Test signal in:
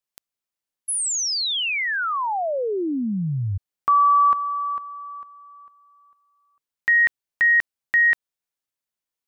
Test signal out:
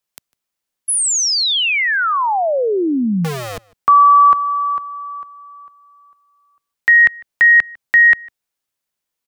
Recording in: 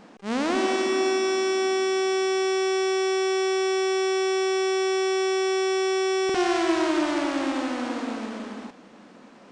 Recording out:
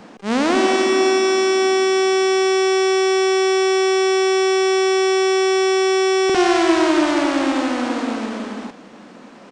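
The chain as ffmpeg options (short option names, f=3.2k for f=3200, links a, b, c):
-filter_complex "[0:a]acrossover=split=150|2400[a][b][c];[a]aeval=exprs='(mod(28.2*val(0)+1,2)-1)/28.2':c=same[d];[d][b][c]amix=inputs=3:normalize=0,asplit=2[e][f];[f]adelay=151.6,volume=-25dB,highshelf=f=4k:g=-3.41[g];[e][g]amix=inputs=2:normalize=0,volume=7.5dB"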